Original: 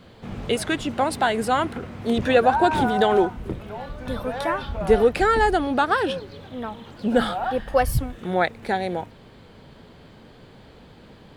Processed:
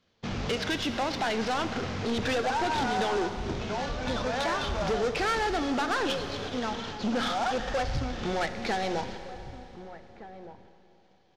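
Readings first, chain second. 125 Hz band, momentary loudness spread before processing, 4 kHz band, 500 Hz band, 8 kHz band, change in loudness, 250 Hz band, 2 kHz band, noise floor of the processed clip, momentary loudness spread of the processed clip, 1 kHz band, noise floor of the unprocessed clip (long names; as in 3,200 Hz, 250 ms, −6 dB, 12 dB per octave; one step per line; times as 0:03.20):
−5.0 dB, 15 LU, −0.5 dB, −8.5 dB, −2.5 dB, −7.5 dB, −6.0 dB, −5.0 dB, −61 dBFS, 17 LU, −7.0 dB, −48 dBFS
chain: variable-slope delta modulation 32 kbit/s
mains-hum notches 60/120/180 Hz
noise gate −42 dBFS, range −27 dB
tilt shelving filter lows −4 dB, about 1,500 Hz
downward compressor 2 to 1, threshold −32 dBFS, peak gain reduction 9.5 dB
soft clipping −31 dBFS, distortion −9 dB
slap from a distant wall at 260 metres, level −14 dB
four-comb reverb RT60 3.2 s, combs from 32 ms, DRR 9 dB
level +6.5 dB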